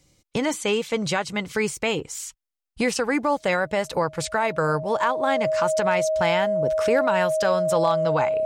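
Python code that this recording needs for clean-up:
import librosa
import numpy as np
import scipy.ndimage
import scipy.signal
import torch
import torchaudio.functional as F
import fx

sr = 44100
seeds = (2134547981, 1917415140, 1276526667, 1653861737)

y = fx.fix_declip(x, sr, threshold_db=-11.0)
y = fx.notch(y, sr, hz=630.0, q=30.0)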